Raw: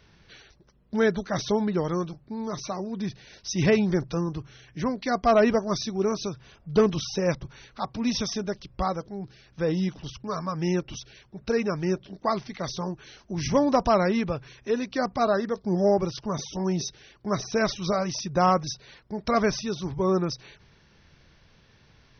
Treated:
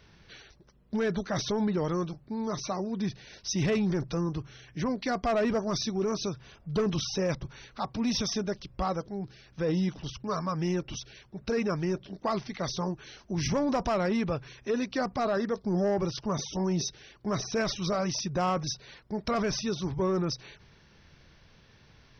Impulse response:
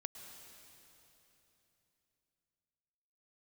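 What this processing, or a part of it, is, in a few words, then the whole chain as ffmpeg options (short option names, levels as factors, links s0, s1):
soft clipper into limiter: -af "asoftclip=type=tanh:threshold=0.158,alimiter=limit=0.0841:level=0:latency=1:release=12"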